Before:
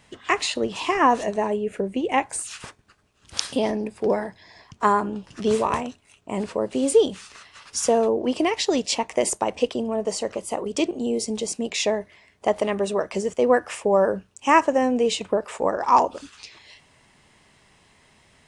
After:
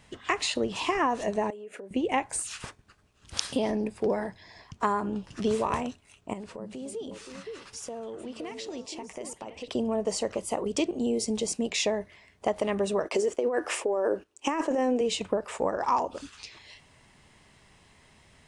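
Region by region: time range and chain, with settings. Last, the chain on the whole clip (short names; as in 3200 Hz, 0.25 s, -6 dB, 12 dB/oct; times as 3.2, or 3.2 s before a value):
1.5–1.91 compressor 8:1, threshold -34 dBFS + HPF 370 Hz
6.33–9.68 compressor 2.5:1, threshold -42 dBFS + delay with a stepping band-pass 0.261 s, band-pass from 160 Hz, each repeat 1.4 oct, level -0.5 dB
13.05–15.01 gate -45 dBFS, range -11 dB + resonant low shelf 230 Hz -11 dB, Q 3 + negative-ratio compressor -21 dBFS
whole clip: low shelf 120 Hz +6 dB; compressor 4:1, threshold -21 dBFS; gain -2 dB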